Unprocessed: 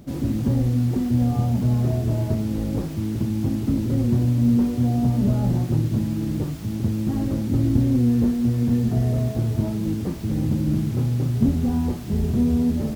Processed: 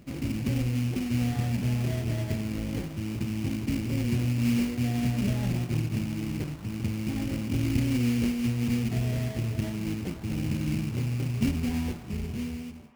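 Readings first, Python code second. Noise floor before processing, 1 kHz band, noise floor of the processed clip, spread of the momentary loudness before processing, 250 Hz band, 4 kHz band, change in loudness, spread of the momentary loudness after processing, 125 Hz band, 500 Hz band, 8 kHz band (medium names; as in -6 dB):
-29 dBFS, -6.5 dB, -39 dBFS, 6 LU, -7.5 dB, +2.5 dB, -7.0 dB, 7 LU, -7.0 dB, -7.5 dB, 0.0 dB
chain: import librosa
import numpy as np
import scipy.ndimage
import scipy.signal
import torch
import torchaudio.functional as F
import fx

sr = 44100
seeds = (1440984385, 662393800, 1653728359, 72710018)

y = fx.fade_out_tail(x, sr, length_s=1.13)
y = fx.sample_hold(y, sr, seeds[0], rate_hz=2600.0, jitter_pct=20)
y = fx.echo_banded(y, sr, ms=260, feedback_pct=84, hz=990.0, wet_db=-15.5)
y = y * librosa.db_to_amplitude(-7.0)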